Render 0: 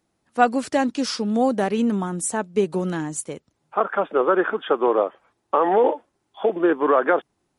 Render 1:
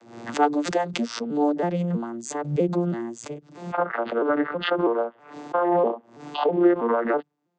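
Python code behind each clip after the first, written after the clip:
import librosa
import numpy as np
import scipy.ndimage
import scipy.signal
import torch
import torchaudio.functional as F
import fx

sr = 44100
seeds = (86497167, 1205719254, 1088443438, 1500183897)

y = fx.vocoder_arp(x, sr, chord='major triad', root=46, every_ms=324)
y = scipy.signal.sosfilt(scipy.signal.bessel(2, 290.0, 'highpass', norm='mag', fs=sr, output='sos'), y)
y = fx.pre_swell(y, sr, db_per_s=94.0)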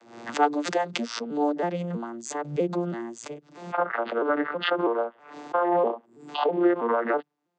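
y = fx.weighting(x, sr, curve='A')
y = fx.spec_box(y, sr, start_s=6.06, length_s=0.23, low_hz=460.0, high_hz=7000.0, gain_db=-15)
y = fx.low_shelf(y, sr, hz=240.0, db=10.5)
y = y * 10.0 ** (-1.0 / 20.0)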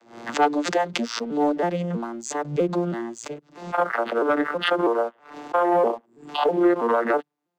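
y = fx.leveller(x, sr, passes=1)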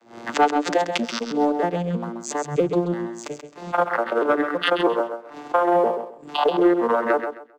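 y = fx.transient(x, sr, attack_db=3, sustain_db=-5)
y = fx.echo_feedback(y, sr, ms=132, feedback_pct=23, wet_db=-8.0)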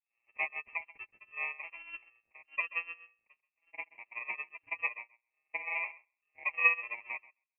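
y = fx.bit_reversed(x, sr, seeds[0], block=32)
y = fx.freq_invert(y, sr, carrier_hz=2900)
y = fx.upward_expand(y, sr, threshold_db=-38.0, expansion=2.5)
y = y * 10.0 ** (-6.0 / 20.0)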